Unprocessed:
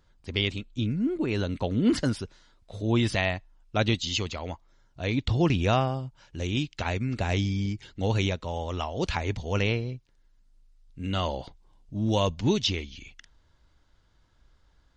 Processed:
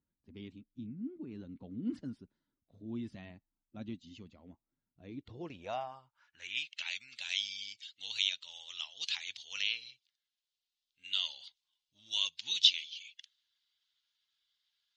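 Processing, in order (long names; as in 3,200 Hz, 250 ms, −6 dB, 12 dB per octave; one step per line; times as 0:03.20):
spectral magnitudes quantised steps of 15 dB
high-shelf EQ 3,200 Hz +11.5 dB
band-pass filter sweep 260 Hz → 3,400 Hz, 0:04.99–0:06.95
guitar amp tone stack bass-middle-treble 5-5-5
one half of a high-frequency compander decoder only
level +6.5 dB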